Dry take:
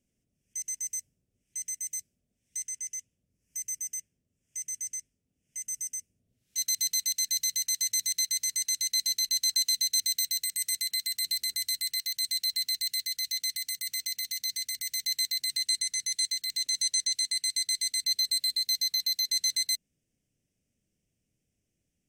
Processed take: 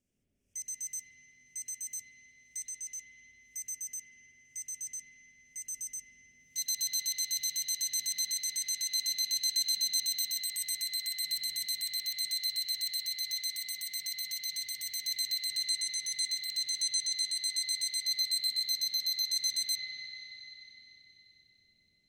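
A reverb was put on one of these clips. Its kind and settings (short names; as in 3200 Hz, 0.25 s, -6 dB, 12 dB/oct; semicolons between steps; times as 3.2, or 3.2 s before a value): spring tank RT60 3.9 s, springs 44/57 ms, chirp 60 ms, DRR -5 dB; gain -4.5 dB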